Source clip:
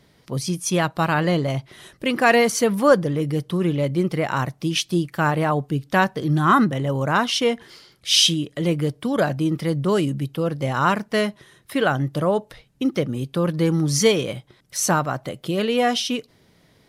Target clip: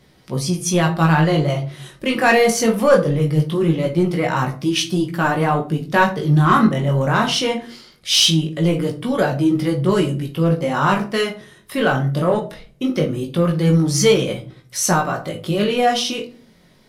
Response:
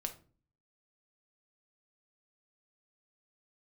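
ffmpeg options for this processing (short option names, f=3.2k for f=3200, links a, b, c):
-filter_complex "[0:a]flanger=delay=15.5:depth=7.3:speed=0.21,asplit=2[a][b];[b]asoftclip=type=tanh:threshold=-20.5dB,volume=-4.5dB[c];[a][c]amix=inputs=2:normalize=0[d];[1:a]atrim=start_sample=2205[e];[d][e]afir=irnorm=-1:irlink=0,volume=3.5dB"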